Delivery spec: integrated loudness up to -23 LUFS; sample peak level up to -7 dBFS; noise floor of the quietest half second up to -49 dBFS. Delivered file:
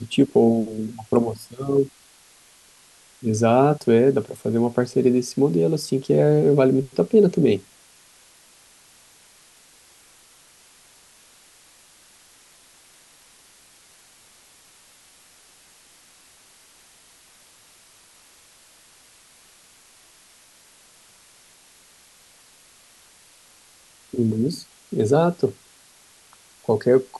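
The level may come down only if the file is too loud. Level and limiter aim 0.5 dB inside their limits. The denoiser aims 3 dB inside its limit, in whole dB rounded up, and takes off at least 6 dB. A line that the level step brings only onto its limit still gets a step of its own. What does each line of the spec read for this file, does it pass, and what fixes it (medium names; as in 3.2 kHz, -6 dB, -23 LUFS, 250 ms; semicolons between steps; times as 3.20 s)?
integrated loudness -20.5 LUFS: fail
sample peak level -5.5 dBFS: fail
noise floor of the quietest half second -53 dBFS: pass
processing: trim -3 dB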